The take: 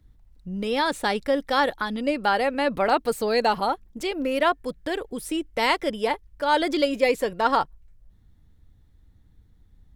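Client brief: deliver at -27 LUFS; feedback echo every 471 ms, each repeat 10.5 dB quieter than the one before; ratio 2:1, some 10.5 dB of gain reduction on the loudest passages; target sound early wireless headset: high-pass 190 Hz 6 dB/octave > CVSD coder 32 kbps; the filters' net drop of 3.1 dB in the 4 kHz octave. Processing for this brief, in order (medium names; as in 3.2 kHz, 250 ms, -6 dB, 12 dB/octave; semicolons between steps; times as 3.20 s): peaking EQ 4 kHz -4 dB; compression 2:1, threshold -36 dBFS; high-pass 190 Hz 6 dB/octave; feedback delay 471 ms, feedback 30%, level -10.5 dB; CVSD coder 32 kbps; trim +7.5 dB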